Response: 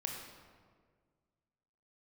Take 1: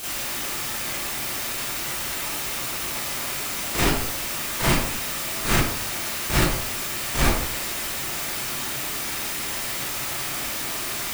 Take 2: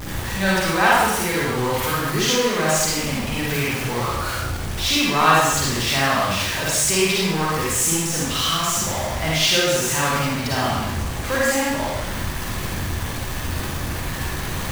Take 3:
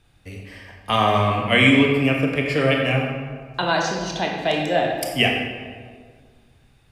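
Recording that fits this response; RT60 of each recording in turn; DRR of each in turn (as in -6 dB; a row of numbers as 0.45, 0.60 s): 3; 0.65, 1.0, 1.7 s; -10.0, -6.0, 0.5 dB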